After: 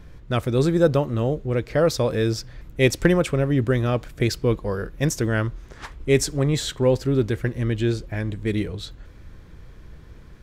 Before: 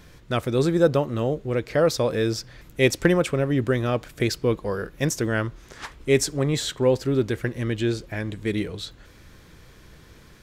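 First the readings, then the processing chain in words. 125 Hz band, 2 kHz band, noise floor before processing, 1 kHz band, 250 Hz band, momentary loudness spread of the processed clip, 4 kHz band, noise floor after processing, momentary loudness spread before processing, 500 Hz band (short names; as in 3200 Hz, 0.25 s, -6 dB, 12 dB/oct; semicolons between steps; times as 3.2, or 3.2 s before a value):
+4.0 dB, 0.0 dB, -50 dBFS, 0.0 dB, +1.5 dB, 10 LU, 0.0 dB, -44 dBFS, 11 LU, +0.5 dB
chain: low shelf 96 Hz +10.5 dB; mismatched tape noise reduction decoder only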